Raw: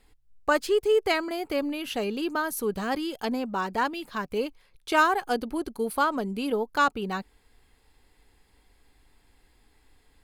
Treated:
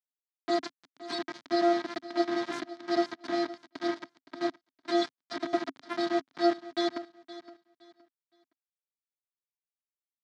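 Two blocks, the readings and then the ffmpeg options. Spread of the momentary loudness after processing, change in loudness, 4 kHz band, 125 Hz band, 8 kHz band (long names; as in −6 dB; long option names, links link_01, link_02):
18 LU, −4.5 dB, −2.5 dB, can't be measured, −10.5 dB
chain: -filter_complex "[0:a]afftfilt=real='re*(1-between(b*sr/4096,320,3500))':imag='im*(1-between(b*sr/4096,320,3500))':win_size=4096:overlap=0.75,equalizer=frequency=1000:width_type=o:width=0.63:gain=3.5,aecho=1:1:7:0.74,acrossover=split=340|1200|1900[link_01][link_02][link_03][link_04];[link_02]acompressor=threshold=-46dB:ratio=10[link_05];[link_04]aeval=exprs='(mod(15.8*val(0)+1,2)-1)/15.8':channel_layout=same[link_06];[link_01][link_05][link_03][link_06]amix=inputs=4:normalize=0,afftfilt=real='hypot(re,im)*cos(PI*b)':imag='0':win_size=512:overlap=0.75,aeval=exprs='val(0)+0.00355*sin(2*PI*1600*n/s)':channel_layout=same,aeval=exprs='0.211*(cos(1*acos(clip(val(0)/0.211,-1,1)))-cos(1*PI/2))+0.00376*(cos(5*acos(clip(val(0)/0.211,-1,1)))-cos(5*PI/2))+0.0841*(cos(8*acos(clip(val(0)/0.211,-1,1)))-cos(8*PI/2))':channel_layout=same,acrusher=bits=5:mix=0:aa=0.000001,highpass=frequency=140:width=0.5412,highpass=frequency=140:width=1.3066,equalizer=frequency=270:width_type=q:width=4:gain=10,equalizer=frequency=500:width_type=q:width=4:gain=-6,equalizer=frequency=2700:width_type=q:width=4:gain=-9,lowpass=frequency=4600:width=0.5412,lowpass=frequency=4600:width=1.3066,aecho=1:1:517|1034|1551:0.158|0.0412|0.0107,volume=4dB"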